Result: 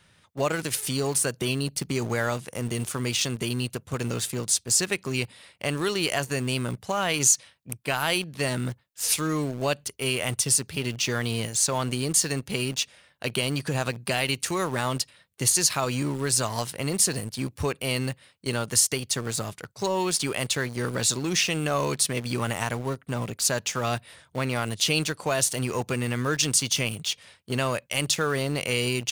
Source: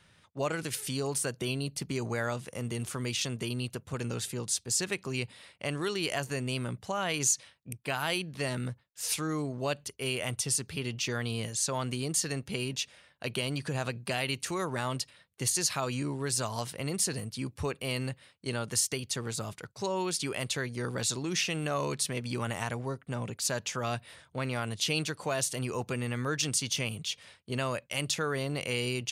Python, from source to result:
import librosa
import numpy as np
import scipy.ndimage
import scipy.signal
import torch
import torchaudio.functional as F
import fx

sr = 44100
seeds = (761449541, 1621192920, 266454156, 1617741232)

p1 = fx.high_shelf(x, sr, hz=9400.0, db=4.5)
p2 = np.where(np.abs(p1) >= 10.0 ** (-34.5 / 20.0), p1, 0.0)
p3 = p1 + (p2 * librosa.db_to_amplitude(-5.0))
y = p3 * librosa.db_to_amplitude(2.0)